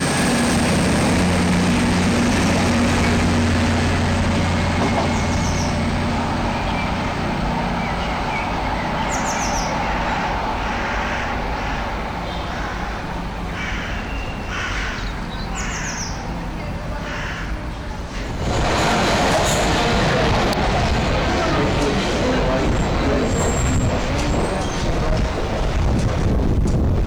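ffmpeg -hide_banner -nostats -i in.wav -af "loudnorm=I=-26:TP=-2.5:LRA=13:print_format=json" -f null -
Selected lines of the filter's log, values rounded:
"input_i" : "-20.3",
"input_tp" : "-11.6",
"input_lra" : "8.0",
"input_thresh" : "-30.3",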